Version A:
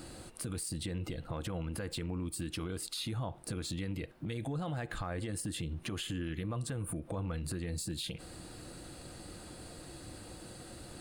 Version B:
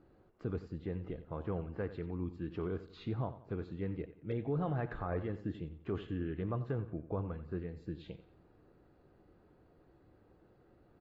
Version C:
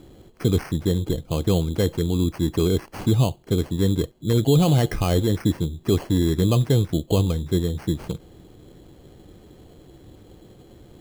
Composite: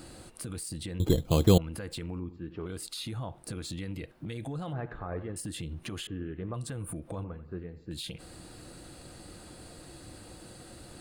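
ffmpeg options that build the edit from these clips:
-filter_complex "[1:a]asplit=4[s0][s1][s2][s3];[0:a]asplit=6[s4][s5][s6][s7][s8][s9];[s4]atrim=end=1.002[s10];[2:a]atrim=start=0.998:end=1.582[s11];[s5]atrim=start=1.578:end=2.202[s12];[s0]atrim=start=2.198:end=2.662[s13];[s6]atrim=start=2.658:end=4.732[s14];[s1]atrim=start=4.728:end=5.362[s15];[s7]atrim=start=5.358:end=6.072[s16];[s2]atrim=start=6.068:end=6.542[s17];[s8]atrim=start=6.538:end=7.242[s18];[s3]atrim=start=7.238:end=7.912[s19];[s9]atrim=start=7.908[s20];[s10][s11]acrossfade=d=0.004:c1=hsin:c2=hsin[s21];[s21][s12]acrossfade=d=0.004:c1=hsin:c2=hsin[s22];[s22][s13]acrossfade=d=0.004:c1=hsin:c2=hsin[s23];[s23][s14]acrossfade=d=0.004:c1=hsin:c2=hsin[s24];[s24][s15]acrossfade=d=0.004:c1=hsin:c2=hsin[s25];[s25][s16]acrossfade=d=0.004:c1=hsin:c2=hsin[s26];[s26][s17]acrossfade=d=0.004:c1=hsin:c2=hsin[s27];[s27][s18]acrossfade=d=0.004:c1=hsin:c2=hsin[s28];[s28][s19]acrossfade=d=0.004:c1=hsin:c2=hsin[s29];[s29][s20]acrossfade=d=0.004:c1=hsin:c2=hsin"

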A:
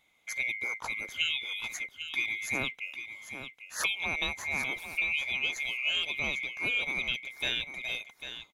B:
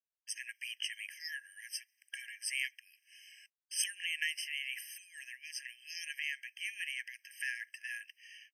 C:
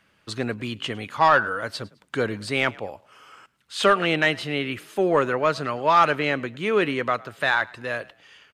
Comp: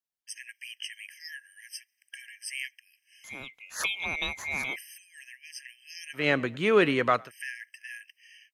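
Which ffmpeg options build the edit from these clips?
-filter_complex "[1:a]asplit=3[s0][s1][s2];[s0]atrim=end=3.242[s3];[0:a]atrim=start=3.238:end=4.762[s4];[s1]atrim=start=4.758:end=6.29[s5];[2:a]atrim=start=6.13:end=7.32[s6];[s2]atrim=start=7.16[s7];[s3][s4]acrossfade=d=0.004:c1=hsin:c2=hsin[s8];[s8][s5]acrossfade=d=0.004:c1=hsin:c2=hsin[s9];[s9][s6]acrossfade=d=0.16:c1=tri:c2=tri[s10];[s10][s7]acrossfade=d=0.16:c1=tri:c2=tri"

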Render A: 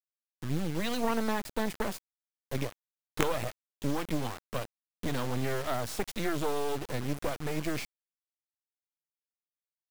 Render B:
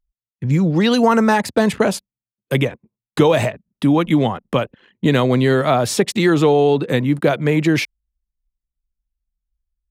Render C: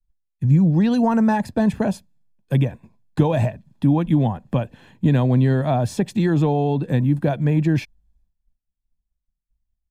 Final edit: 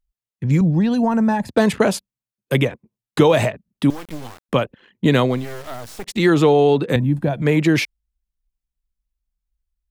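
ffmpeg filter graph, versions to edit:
-filter_complex "[2:a]asplit=2[s0][s1];[0:a]asplit=2[s2][s3];[1:a]asplit=5[s4][s5][s6][s7][s8];[s4]atrim=end=0.612[s9];[s0]atrim=start=0.608:end=1.492[s10];[s5]atrim=start=1.488:end=3.902[s11];[s2]atrim=start=3.898:end=4.492[s12];[s6]atrim=start=4.488:end=5.46[s13];[s3]atrim=start=5.22:end=6.25[s14];[s7]atrim=start=6.01:end=6.962[s15];[s1]atrim=start=6.958:end=7.422[s16];[s8]atrim=start=7.418[s17];[s9][s10]acrossfade=d=0.004:c1=hsin:c2=hsin[s18];[s18][s11]acrossfade=d=0.004:c1=hsin:c2=hsin[s19];[s19][s12]acrossfade=d=0.004:c1=hsin:c2=hsin[s20];[s20][s13]acrossfade=d=0.004:c1=hsin:c2=hsin[s21];[s21][s14]acrossfade=d=0.24:c1=tri:c2=tri[s22];[s22][s15]acrossfade=d=0.24:c1=tri:c2=tri[s23];[s23][s16]acrossfade=d=0.004:c1=hsin:c2=hsin[s24];[s24][s17]acrossfade=d=0.004:c1=hsin:c2=hsin"

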